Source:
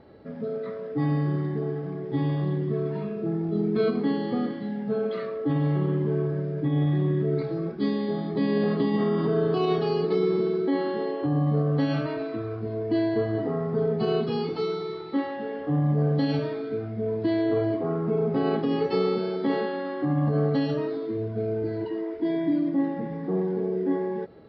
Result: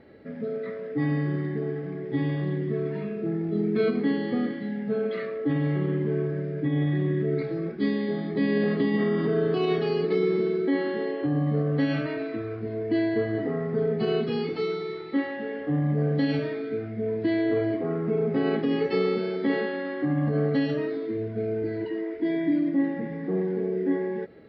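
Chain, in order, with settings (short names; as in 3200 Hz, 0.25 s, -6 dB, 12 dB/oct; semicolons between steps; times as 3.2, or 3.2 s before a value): graphic EQ 250/500/1000/2000 Hz +4/+3/-5/+11 dB; gain -3.5 dB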